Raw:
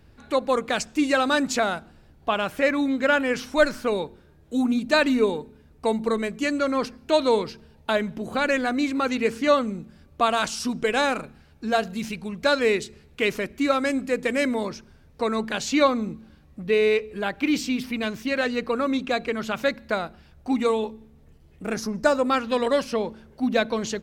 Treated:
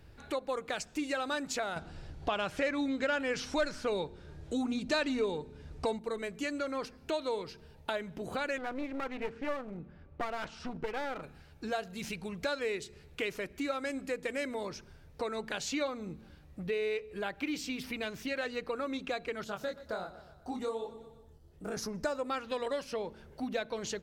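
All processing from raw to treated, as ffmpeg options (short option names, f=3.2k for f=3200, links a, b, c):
-filter_complex "[0:a]asettb=1/sr,asplit=3[a][b][c];[a]atrim=end=1.764[d];[b]atrim=start=1.76:end=5.99,asetpts=PTS-STARTPTS,afade=t=in:d=0.004:c=qsin,afade=t=out:st=4.226:d=0.004:c=qsin,lowpass=6.3k,bass=f=250:g=3,treble=f=4k:g=6,acontrast=83[e];[c]atrim=start=5.986[f];[d][e]acrossfade=d=0.004:c1=hsin:c2=qsin[g];[g][f]acrossfade=d=0.004:c1=qsin:c2=hsin,asettb=1/sr,asplit=3[h][i][j];[h]atrim=end=8.584[k];[i]atrim=start=8.58:end=11.22,asetpts=PTS-STARTPTS,afade=t=in:d=0.004:c=qsin,afade=t=out:st=2.636:d=0.004:c=qsin,lowpass=2k,aeval=exprs='clip(val(0),-1,0.0299)':c=same[l];[j]atrim=start=11.216[m];[k][l]acrossfade=d=0.004:c1=hsin:c2=qsin[n];[n][m]acrossfade=d=0.004:c1=qsin:c2=hsin,asettb=1/sr,asplit=3[o][p][q];[o]atrim=end=19.444[r];[p]atrim=start=19.44:end=21.77,asetpts=PTS-STARTPTS,afade=t=in:d=0.004:c=qsin,afade=t=out:st=2.326:d=0.004:c=qsin,equalizer=f=2.3k:w=2.1:g=-12.5,flanger=delay=19:depth=5.7:speed=1.3,aecho=1:1:122|244|366|488:0.112|0.0572|0.0292|0.0149,atrim=end_sample=102753[s];[q]atrim=start=21.766[t];[r][s]acrossfade=d=0.004:c1=hsin:c2=qsin[u];[u][t]acrossfade=d=0.004:c1=qsin:c2=hsin,equalizer=f=230:t=o:w=0.41:g=-8.5,bandreject=f=1.1k:w=21,acompressor=threshold=-35dB:ratio=2.5,volume=-1.5dB"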